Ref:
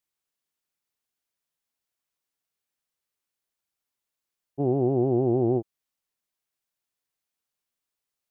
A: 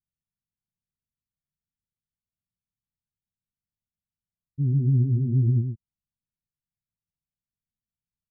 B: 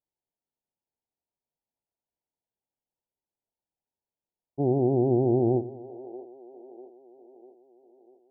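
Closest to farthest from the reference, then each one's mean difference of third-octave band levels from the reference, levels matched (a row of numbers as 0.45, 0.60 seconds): B, A; 1.0, 8.5 decibels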